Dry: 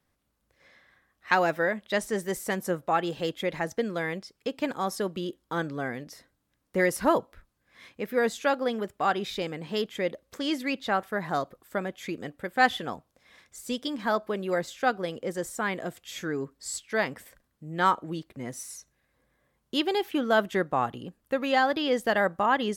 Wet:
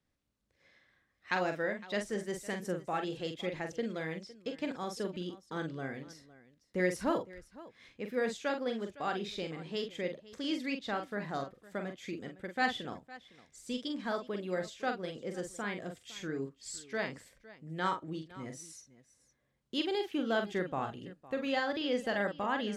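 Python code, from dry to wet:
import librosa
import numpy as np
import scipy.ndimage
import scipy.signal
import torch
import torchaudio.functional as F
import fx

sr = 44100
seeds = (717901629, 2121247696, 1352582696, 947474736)

y = scipy.signal.sosfilt(scipy.signal.butter(2, 7500.0, 'lowpass', fs=sr, output='sos'), x)
y = fx.peak_eq(y, sr, hz=1000.0, db=-5.5, octaves=1.7)
y = fx.echo_multitap(y, sr, ms=(44, 509), db=(-6.5, -18.5))
y = F.gain(torch.from_numpy(y), -6.0).numpy()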